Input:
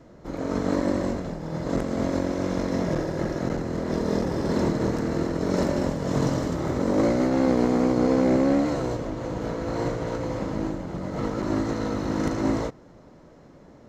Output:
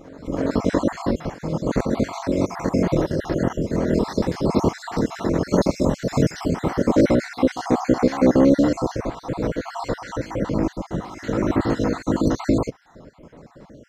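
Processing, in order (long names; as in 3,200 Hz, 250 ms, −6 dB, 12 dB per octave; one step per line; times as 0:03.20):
time-frequency cells dropped at random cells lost 53%
backwards echo 331 ms −19 dB
level +7 dB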